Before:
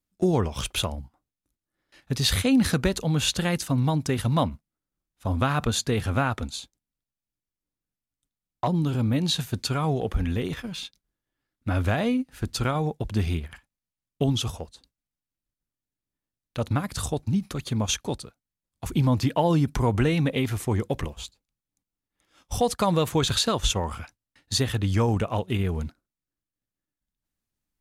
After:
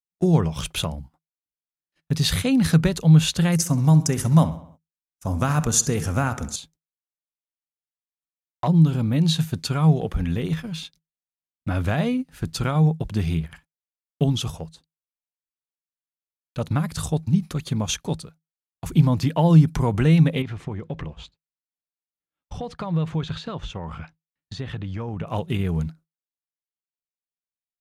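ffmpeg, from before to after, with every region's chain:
-filter_complex "[0:a]asettb=1/sr,asplit=3[a][b][c];[a]atrim=end=3.524[d];[b]atrim=start=3.52:end=6.56,asetpts=PTS-STARTPTS,afade=t=in:d=0.004:c=qsin,afade=t=out:st=3.036:d=0.004:c=qsin,highshelf=f=4.8k:t=q:w=3:g=7,asplit=2[e][f];[f]adelay=66,lowpass=f=4.4k:p=1,volume=-13.5dB,asplit=2[g][h];[h]adelay=66,lowpass=f=4.4k:p=1,volume=0.52,asplit=2[i][j];[j]adelay=66,lowpass=f=4.4k:p=1,volume=0.52,asplit=2[k][l];[l]adelay=66,lowpass=f=4.4k:p=1,volume=0.52,asplit=2[m][n];[n]adelay=66,lowpass=f=4.4k:p=1,volume=0.52[o];[e][g][i][k][m][o]amix=inputs=6:normalize=0,atrim=end_sample=134064[p];[c]atrim=start=6.556[q];[d][p]acrossfade=d=0.004:c1=hsin:c2=qsin[r];[r][q]acrossfade=d=0.004:c1=qsin:c2=hsin,asettb=1/sr,asplit=3[s][t][u];[s]atrim=end=20.424[v];[t]atrim=start=20.42:end=25.27,asetpts=PTS-STARTPTS,afade=t=in:d=0.004:c=qsin,afade=t=out:st=4.846:d=0.004:c=qsin,acompressor=threshold=-30dB:ratio=3:attack=3.2:release=140:knee=1:detection=peak,lowpass=3.2k[w];[u]atrim=start=25.266[x];[v][w]acrossfade=d=0.004:c1=hsin:c2=qsin[y];[y][x]acrossfade=d=0.004:c1=qsin:c2=hsin,agate=range=-30dB:threshold=-51dB:ratio=16:detection=peak,equalizer=f=160:w=6.5:g=14"

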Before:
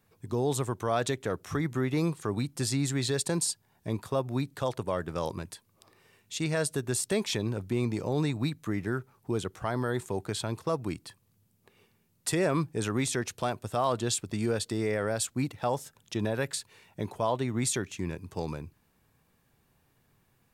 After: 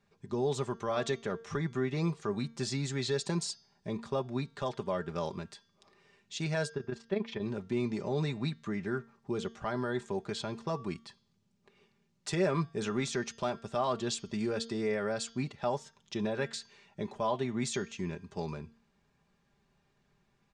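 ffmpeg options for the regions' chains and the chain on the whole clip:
-filter_complex "[0:a]asettb=1/sr,asplit=3[a][b][c];[a]atrim=end=6.694[d];[b]atrim=start=6.69:end=7.42,asetpts=PTS-STARTPTS,afade=t=in:d=0.004:c=qsin,afade=t=out:st=0.726:d=0.004:c=qsin,lowpass=2.4k,tremolo=f=25:d=0.75[e];[c]atrim=start=7.416[f];[d][e]acrossfade=d=0.004:c1=hsin:c2=qsin[g];[g][f]acrossfade=d=0.004:c1=qsin:c2=hsin,lowpass=f=6.7k:w=0.5412,lowpass=f=6.7k:w=1.3066,aecho=1:1:5:0.6,bandreject=f=228.7:t=h:w=4,bandreject=f=457.4:t=h:w=4,bandreject=f=686.1:t=h:w=4,bandreject=f=914.8:t=h:w=4,bandreject=f=1.1435k:t=h:w=4,bandreject=f=1.3722k:t=h:w=4,bandreject=f=1.6009k:t=h:w=4,bandreject=f=1.8296k:t=h:w=4,bandreject=f=2.0583k:t=h:w=4,bandreject=f=2.287k:t=h:w=4,bandreject=f=2.5157k:t=h:w=4,bandreject=f=2.7444k:t=h:w=4,bandreject=f=2.9731k:t=h:w=4,bandreject=f=3.2018k:t=h:w=4,bandreject=f=3.4305k:t=h:w=4,bandreject=f=3.6592k:t=h:w=4,bandreject=f=3.8879k:t=h:w=4,bandreject=f=4.1166k:t=h:w=4,bandreject=f=4.3453k:t=h:w=4,bandreject=f=4.574k:t=h:w=4,bandreject=f=4.8027k:t=h:w=4,bandreject=f=5.0314k:t=h:w=4,bandreject=f=5.2601k:t=h:w=4,bandreject=f=5.4888k:t=h:w=4,bandreject=f=5.7175k:t=h:w=4,bandreject=f=5.9462k:t=h:w=4,bandreject=f=6.1749k:t=h:w=4,bandreject=f=6.4036k:t=h:w=4,bandreject=f=6.6323k:t=h:w=4,volume=-4dB"

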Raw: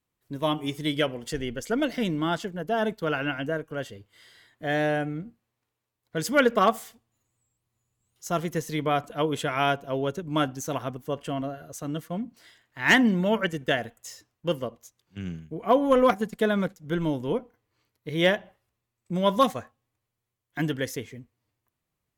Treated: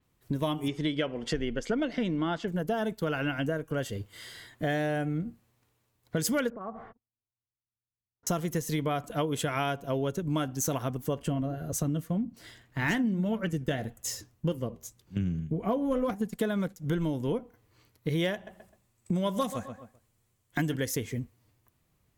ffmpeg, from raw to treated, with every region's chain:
-filter_complex "[0:a]asettb=1/sr,asplit=3[a][b][c];[a]atrim=end=0.684[d];[b]atrim=start=0.68:end=2.48,asetpts=PTS-STARTPTS,afade=t=in:d=0.004:c=qsin,afade=t=out:st=1.796:d=0.004:c=qsin,lowpass=3.6k,equalizer=f=100:w=1.5:g=-10.5[e];[c]atrim=start=2.476[f];[d][e]acrossfade=d=0.004:c1=hsin:c2=qsin[g];[g][f]acrossfade=d=0.004:c1=qsin:c2=hsin,asettb=1/sr,asplit=3[h][i][j];[h]atrim=end=6.504[k];[i]atrim=start=6.5:end=8.27,asetpts=PTS-STARTPTS,afade=t=in:d=0.004:c=qsin,afade=t=out:st=1.766:d=0.004:c=qsin,agate=range=-34dB:threshold=-53dB:ratio=16:release=100:detection=peak,lowpass=f=1.4k:w=0.5412,lowpass=f=1.4k:w=1.3066,acompressor=threshold=-35dB:ratio=6:attack=3.2:release=140:knee=1:detection=peak[l];[j]atrim=start=8.266[m];[k][l]acrossfade=d=0.004:c1=hsin:c2=qsin[n];[n][m]acrossfade=d=0.004:c1=qsin:c2=hsin,asettb=1/sr,asplit=3[o][p][q];[o]atrim=end=11.194[r];[p]atrim=start=11.19:end=16.26,asetpts=PTS-STARTPTS,afade=t=in:d=0.004:c=qsin,afade=t=out:st=5.066:d=0.004:c=qsin,lowshelf=f=410:g=8.5,flanger=delay=3:depth=6.1:regen=-75:speed=1.8:shape=triangular[s];[q]atrim=start=16.256[t];[r][s]acrossfade=d=0.004:c1=hsin:c2=qsin[u];[u][t]acrossfade=d=0.004:c1=qsin:c2=hsin,asettb=1/sr,asplit=3[v][w][x];[v]atrim=end=18.344[y];[w]atrim=start=18.34:end=20.76,asetpts=PTS-STARTPTS,afade=t=in:d=0.004:c=qsin,afade=t=out:st=2.416:d=0.004:c=qsin,equalizer=f=8.1k:w=1.9:g=5.5,asplit=2[z][aa];[aa]adelay=129,lowpass=f=2.6k:p=1,volume=-14dB,asplit=2[ab][ac];[ac]adelay=129,lowpass=f=2.6k:p=1,volume=0.23,asplit=2[ad][ae];[ae]adelay=129,lowpass=f=2.6k:p=1,volume=0.23[af];[z][ab][ad][af]amix=inputs=4:normalize=0,atrim=end_sample=106722[ag];[x]atrim=start=20.756[ah];[y][ag]acrossfade=d=0.004:c1=hsin:c2=qsin[ai];[ai][ah]acrossfade=d=0.004:c1=qsin:c2=hsin,lowshelf=f=260:g=6.5,acompressor=threshold=-35dB:ratio=6,adynamicequalizer=threshold=0.001:dfrequency=5400:dqfactor=0.7:tfrequency=5400:tqfactor=0.7:attack=5:release=100:ratio=0.375:range=3.5:mode=boostabove:tftype=highshelf,volume=7.5dB"

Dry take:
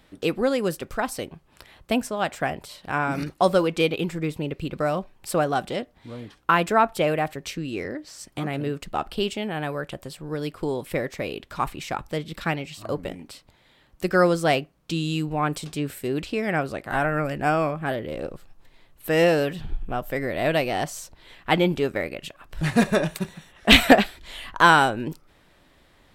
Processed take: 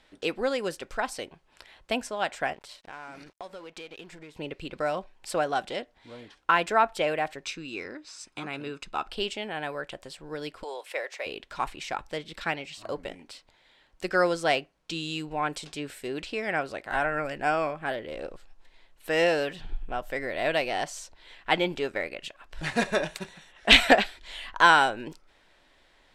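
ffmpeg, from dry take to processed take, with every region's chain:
-filter_complex "[0:a]asettb=1/sr,asplit=3[a][b][c];[a]atrim=end=2.534[d];[b]atrim=start=2.53:end=4.35,asetpts=PTS-STARTPTS,afade=t=in:d=0.004:c=qsin,afade=t=out:st=1.816:d=0.004:c=qsin,acompressor=threshold=-34dB:ratio=6:attack=3.2:release=140:knee=1:detection=peak,aeval=exprs='sgn(val(0))*max(abs(val(0))-0.00282,0)':c=same[e];[c]atrim=start=4.346[f];[d][e]acrossfade=d=0.004:c1=hsin:c2=qsin[g];[g][f]acrossfade=d=0.004:c1=qsin:c2=hsin,asettb=1/sr,asplit=3[h][i][j];[h]atrim=end=7.444[k];[i]atrim=start=7.44:end=9.08,asetpts=PTS-STARTPTS,afade=t=in:d=0.004:c=qsin,afade=t=out:st=1.636:d=0.004:c=qsin,lowpass=9.9k,lowshelf=f=170:g=-7.5,aecho=1:1:0.8:0.48,atrim=end_sample=72324[l];[j]atrim=start=9.076[m];[k][l]acrossfade=d=0.004:c1=hsin:c2=qsin[n];[n][m]acrossfade=d=0.004:c1=qsin:c2=hsin,asettb=1/sr,asplit=3[o][p][q];[o]atrim=end=10.634[r];[p]atrim=start=10.63:end=11.26,asetpts=PTS-STARTPTS,afade=t=in:d=0.004:c=qsin,afade=t=out:st=0.626:d=0.004:c=qsin,highpass=f=490:w=0.5412,highpass=f=490:w=1.3066,equalizer=f=2.7k:w=7.4:g=3.5[s];[q]atrim=start=11.256[t];[r][s]acrossfade=d=0.004:c1=hsin:c2=qsin[u];[u][t]acrossfade=d=0.004:c1=qsin:c2=hsin,lowpass=7.7k,equalizer=f=120:t=o:w=2.9:g=-13,bandreject=f=1.2k:w=11,volume=-1dB"

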